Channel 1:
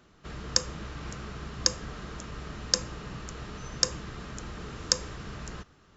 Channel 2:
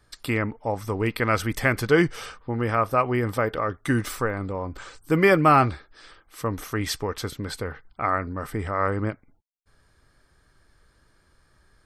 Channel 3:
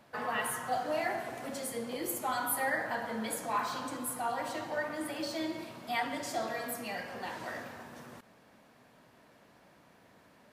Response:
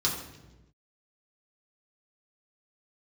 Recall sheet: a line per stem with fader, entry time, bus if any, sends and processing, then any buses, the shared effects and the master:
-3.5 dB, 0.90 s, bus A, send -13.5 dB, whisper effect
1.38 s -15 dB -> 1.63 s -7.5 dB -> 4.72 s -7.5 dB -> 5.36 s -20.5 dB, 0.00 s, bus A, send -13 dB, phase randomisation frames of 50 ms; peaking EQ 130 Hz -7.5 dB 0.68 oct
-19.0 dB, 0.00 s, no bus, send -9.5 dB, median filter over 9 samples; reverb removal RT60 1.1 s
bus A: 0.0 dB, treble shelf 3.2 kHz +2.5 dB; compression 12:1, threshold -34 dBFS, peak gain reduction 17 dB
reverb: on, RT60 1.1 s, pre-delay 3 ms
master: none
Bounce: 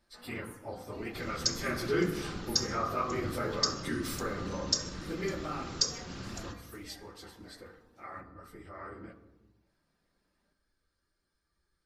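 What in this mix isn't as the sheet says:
stem 3: missing median filter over 9 samples; master: extra peaking EQ 88 Hz -5.5 dB 0.91 oct

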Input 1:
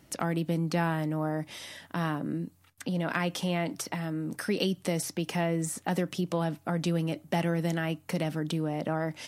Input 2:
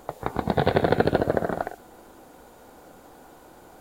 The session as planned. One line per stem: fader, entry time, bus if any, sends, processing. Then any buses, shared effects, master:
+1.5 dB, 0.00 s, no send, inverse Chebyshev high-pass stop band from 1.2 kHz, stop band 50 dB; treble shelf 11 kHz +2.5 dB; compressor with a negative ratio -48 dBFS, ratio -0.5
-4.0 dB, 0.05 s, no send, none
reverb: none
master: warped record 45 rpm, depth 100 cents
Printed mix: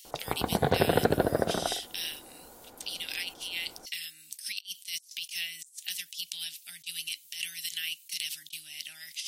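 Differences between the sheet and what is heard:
stem 1 +1.5 dB -> +11.0 dB; master: missing warped record 45 rpm, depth 100 cents

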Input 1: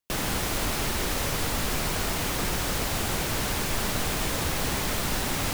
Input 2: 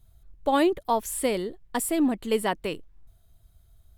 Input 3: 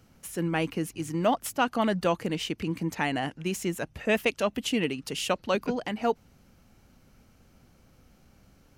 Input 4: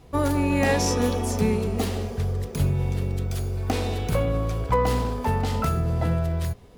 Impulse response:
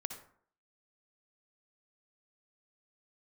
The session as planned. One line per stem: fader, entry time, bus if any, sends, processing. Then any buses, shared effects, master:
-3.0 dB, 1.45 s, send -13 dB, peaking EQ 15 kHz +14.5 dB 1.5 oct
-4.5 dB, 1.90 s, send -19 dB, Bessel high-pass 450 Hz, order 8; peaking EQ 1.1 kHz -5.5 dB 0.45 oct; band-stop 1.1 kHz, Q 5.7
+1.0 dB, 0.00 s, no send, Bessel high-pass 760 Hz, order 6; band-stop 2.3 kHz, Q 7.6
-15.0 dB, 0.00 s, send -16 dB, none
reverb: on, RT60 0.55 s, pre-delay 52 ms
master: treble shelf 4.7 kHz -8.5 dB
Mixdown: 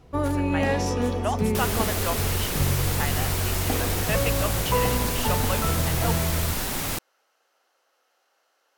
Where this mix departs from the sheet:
stem 2: muted; stem 4 -15.0 dB -> -3.0 dB

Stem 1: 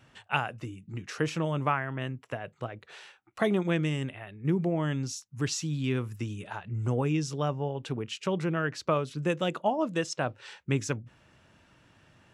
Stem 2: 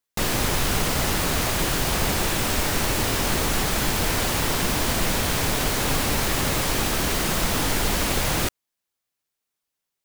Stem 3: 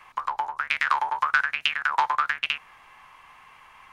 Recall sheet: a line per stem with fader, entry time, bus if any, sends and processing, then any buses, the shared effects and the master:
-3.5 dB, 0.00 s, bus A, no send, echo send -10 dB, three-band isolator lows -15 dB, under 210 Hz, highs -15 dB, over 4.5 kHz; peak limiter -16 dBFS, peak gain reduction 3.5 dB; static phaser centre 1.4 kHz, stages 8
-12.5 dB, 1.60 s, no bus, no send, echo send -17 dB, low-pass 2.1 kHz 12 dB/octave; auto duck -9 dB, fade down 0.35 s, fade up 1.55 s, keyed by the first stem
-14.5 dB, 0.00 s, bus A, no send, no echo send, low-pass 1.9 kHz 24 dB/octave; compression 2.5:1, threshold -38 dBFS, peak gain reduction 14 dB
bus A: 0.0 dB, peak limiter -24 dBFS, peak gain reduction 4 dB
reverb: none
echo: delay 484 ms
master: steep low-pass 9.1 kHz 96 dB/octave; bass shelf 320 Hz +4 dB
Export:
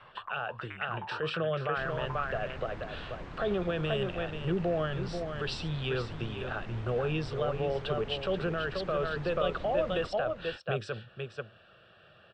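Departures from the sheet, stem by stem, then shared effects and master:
stem 1 -3.5 dB -> +6.5 dB; stem 3 -14.5 dB -> -5.5 dB

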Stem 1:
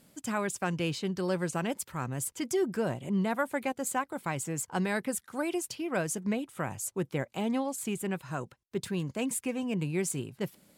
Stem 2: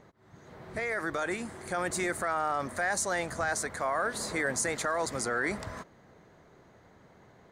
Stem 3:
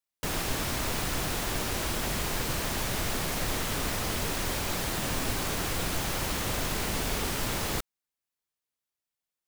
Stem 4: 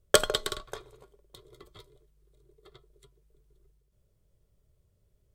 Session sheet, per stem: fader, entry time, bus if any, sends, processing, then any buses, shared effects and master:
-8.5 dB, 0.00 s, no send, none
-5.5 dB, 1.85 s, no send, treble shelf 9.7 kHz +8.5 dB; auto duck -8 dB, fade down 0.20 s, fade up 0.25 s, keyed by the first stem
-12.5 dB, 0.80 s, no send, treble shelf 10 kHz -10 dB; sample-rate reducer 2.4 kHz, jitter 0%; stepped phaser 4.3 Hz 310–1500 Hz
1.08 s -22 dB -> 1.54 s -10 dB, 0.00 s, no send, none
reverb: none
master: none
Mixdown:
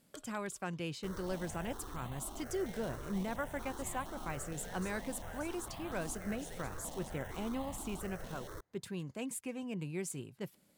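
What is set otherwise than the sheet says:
stem 2 -5.5 dB -> -16.5 dB; stem 4 -22.0 dB -> -31.5 dB

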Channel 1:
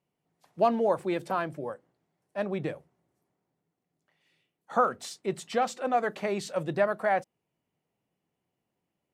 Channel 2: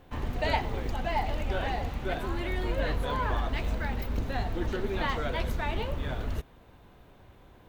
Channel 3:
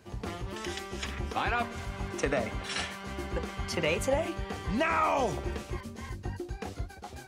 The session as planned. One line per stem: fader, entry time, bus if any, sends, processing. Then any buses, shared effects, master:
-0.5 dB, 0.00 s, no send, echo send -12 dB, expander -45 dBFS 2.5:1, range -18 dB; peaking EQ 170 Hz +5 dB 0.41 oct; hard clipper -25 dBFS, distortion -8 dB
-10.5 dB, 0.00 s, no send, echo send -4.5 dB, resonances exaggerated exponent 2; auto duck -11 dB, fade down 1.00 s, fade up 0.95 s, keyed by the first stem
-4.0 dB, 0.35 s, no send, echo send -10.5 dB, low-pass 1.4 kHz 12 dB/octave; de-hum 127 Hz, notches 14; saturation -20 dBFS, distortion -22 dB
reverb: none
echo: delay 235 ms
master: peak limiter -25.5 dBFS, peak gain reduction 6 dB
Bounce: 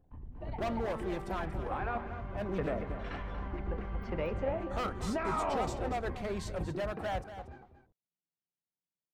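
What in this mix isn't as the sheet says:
stem 1 -0.5 dB -> -7.0 dB; master: missing peak limiter -25.5 dBFS, peak gain reduction 6 dB

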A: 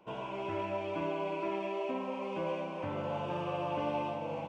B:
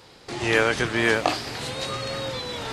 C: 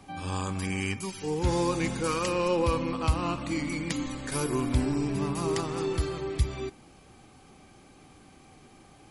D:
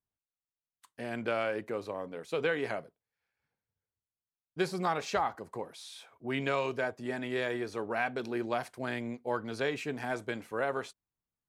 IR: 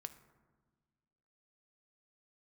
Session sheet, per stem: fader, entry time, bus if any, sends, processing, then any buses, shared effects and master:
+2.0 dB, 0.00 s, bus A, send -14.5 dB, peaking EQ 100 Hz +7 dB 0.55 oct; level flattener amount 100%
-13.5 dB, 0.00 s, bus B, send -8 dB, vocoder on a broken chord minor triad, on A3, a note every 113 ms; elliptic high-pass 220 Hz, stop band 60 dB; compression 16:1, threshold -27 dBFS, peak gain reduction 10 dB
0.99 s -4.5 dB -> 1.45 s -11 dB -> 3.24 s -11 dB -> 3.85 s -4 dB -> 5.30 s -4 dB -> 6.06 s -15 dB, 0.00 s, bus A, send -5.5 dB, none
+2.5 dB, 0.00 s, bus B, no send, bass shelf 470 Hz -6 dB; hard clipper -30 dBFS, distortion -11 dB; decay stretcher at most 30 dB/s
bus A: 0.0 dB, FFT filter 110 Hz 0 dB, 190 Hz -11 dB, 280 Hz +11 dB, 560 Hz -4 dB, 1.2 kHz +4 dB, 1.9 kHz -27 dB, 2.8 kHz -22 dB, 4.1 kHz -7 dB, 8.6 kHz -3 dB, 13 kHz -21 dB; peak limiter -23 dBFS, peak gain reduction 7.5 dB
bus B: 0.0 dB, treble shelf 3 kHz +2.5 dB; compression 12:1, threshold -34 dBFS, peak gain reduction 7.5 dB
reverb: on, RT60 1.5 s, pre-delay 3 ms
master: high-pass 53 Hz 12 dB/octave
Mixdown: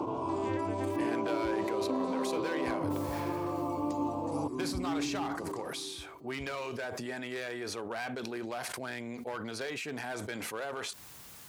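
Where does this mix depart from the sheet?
stem A +2.0 dB -> -4.5 dB; stem C -4.5 dB -> -15.5 dB

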